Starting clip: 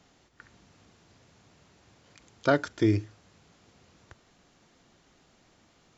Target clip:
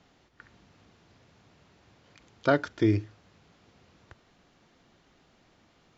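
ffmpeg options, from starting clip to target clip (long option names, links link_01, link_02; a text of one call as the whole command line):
ffmpeg -i in.wav -af "lowpass=4900" out.wav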